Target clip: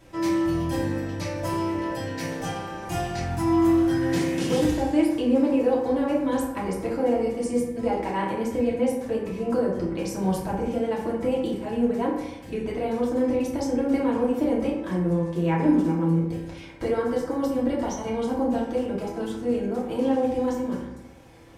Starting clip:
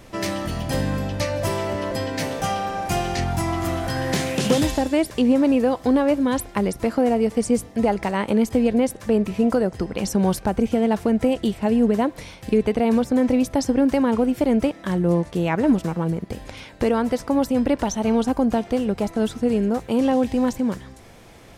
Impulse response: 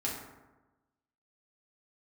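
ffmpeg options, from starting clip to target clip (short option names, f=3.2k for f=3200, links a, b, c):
-filter_complex "[0:a]asettb=1/sr,asplit=3[a][b][c];[a]atrim=end=16.674[d];[b]atrim=start=16.67:end=18.45,asetpts=PTS-STARTPTS,afade=t=in:d=0.004:c=qsin,afade=t=out:st=1.776:d=0.004:c=qsin,bandreject=f=2.6k:w=13[e];[c]atrim=start=18.446[f];[d][e]acrossfade=d=0.004:c1=hsin:c2=qsin[g];[g][f]acrossfade=d=0.004:c1=qsin:c2=hsin[h];[1:a]atrim=start_sample=2205,asetrate=52920,aresample=44100[i];[h][i]afir=irnorm=-1:irlink=0,volume=-8dB"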